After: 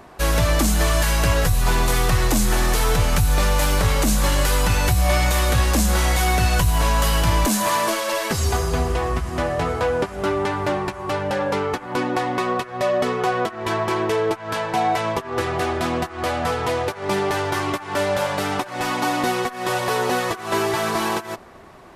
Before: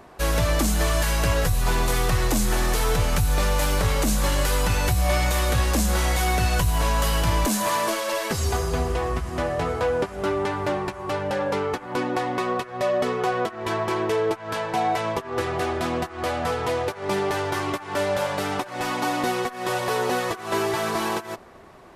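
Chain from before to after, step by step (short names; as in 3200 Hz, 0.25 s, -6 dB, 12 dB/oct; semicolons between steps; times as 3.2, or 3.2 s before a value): bell 470 Hz -2 dB; gain +3.5 dB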